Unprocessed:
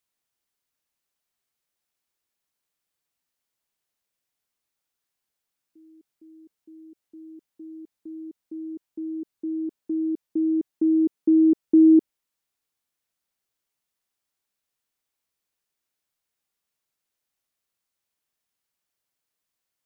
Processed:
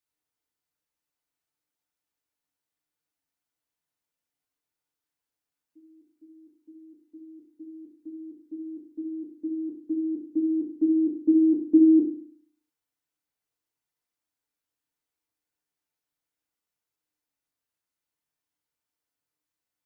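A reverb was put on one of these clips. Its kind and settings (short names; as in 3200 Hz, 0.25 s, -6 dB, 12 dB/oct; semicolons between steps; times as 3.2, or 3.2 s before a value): FDN reverb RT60 0.51 s, low-frequency decay 1.2×, high-frequency decay 0.4×, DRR -2 dB; gain -8 dB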